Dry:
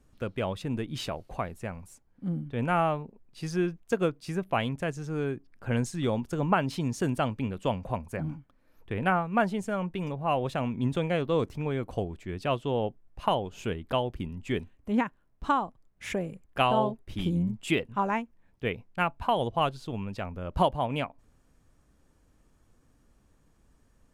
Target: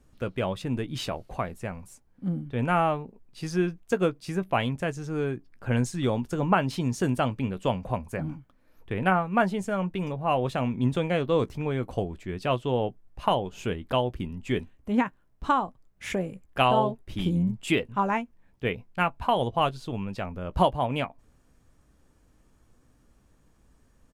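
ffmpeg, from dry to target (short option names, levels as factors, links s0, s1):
-filter_complex "[0:a]asplit=2[s0][s1];[s1]adelay=16,volume=0.224[s2];[s0][s2]amix=inputs=2:normalize=0,volume=1.26"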